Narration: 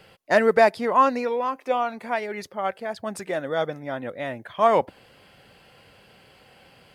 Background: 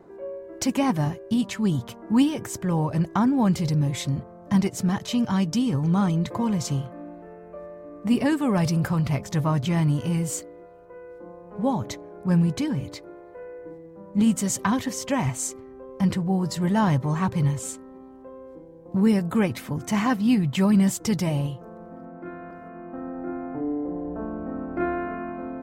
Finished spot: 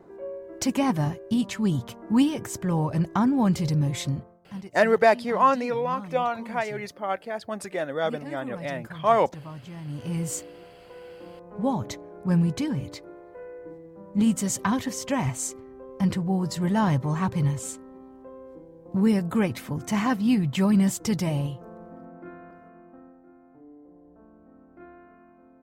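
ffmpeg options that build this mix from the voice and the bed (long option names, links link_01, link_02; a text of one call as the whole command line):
ffmpeg -i stem1.wav -i stem2.wav -filter_complex "[0:a]adelay=4450,volume=-1.5dB[link_01];[1:a]volume=14.5dB,afade=type=out:start_time=4.08:duration=0.32:silence=0.158489,afade=type=in:start_time=9.84:duration=0.47:silence=0.16788,afade=type=out:start_time=21.75:duration=1.47:silence=0.1[link_02];[link_01][link_02]amix=inputs=2:normalize=0" out.wav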